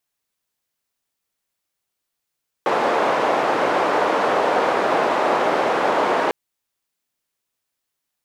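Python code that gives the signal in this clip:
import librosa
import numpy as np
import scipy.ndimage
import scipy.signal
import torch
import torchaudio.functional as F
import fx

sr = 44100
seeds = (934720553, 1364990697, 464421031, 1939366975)

y = fx.band_noise(sr, seeds[0], length_s=3.65, low_hz=520.0, high_hz=670.0, level_db=-19.0)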